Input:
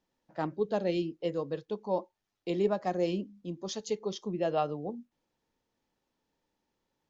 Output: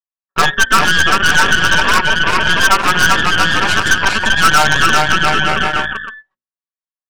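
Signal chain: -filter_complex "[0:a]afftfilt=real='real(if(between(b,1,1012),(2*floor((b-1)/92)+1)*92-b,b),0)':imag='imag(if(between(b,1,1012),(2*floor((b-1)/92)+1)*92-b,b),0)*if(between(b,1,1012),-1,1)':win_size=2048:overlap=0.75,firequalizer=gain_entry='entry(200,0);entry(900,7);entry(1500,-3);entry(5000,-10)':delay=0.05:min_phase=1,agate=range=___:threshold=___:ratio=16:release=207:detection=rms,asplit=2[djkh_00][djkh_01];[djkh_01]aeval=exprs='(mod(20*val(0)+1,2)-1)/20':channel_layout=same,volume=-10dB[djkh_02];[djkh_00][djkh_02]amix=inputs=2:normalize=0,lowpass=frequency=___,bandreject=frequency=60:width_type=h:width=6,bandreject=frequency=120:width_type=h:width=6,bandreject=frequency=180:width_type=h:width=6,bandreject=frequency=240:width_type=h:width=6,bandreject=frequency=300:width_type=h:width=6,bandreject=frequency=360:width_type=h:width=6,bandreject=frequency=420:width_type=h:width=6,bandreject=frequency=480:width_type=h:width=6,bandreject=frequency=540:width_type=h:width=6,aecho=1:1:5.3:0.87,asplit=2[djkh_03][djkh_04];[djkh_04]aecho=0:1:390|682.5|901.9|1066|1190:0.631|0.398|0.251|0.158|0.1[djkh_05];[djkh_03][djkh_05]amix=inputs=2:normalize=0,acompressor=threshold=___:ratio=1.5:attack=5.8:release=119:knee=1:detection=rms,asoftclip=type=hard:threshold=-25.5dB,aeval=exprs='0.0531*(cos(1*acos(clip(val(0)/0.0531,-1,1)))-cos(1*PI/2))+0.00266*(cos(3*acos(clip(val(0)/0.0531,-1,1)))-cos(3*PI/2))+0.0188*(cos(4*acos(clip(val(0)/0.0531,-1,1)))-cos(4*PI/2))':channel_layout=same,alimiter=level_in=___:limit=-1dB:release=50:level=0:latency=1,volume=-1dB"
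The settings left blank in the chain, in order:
-58dB, -52dB, 5800, -36dB, 27.5dB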